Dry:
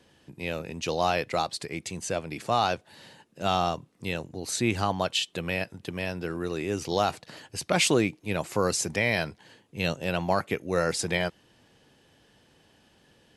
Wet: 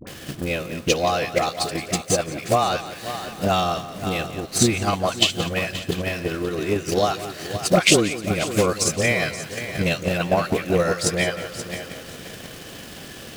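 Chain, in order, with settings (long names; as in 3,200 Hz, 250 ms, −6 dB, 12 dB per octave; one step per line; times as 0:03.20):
converter with a step at zero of −37 dBFS
notch filter 900 Hz, Q 5.4
all-pass dispersion highs, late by 72 ms, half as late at 780 Hz
on a send: echo machine with several playback heads 176 ms, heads first and third, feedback 44%, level −11 dB
on the sum: transient designer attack +11 dB, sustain −3 dB
level +2.5 dB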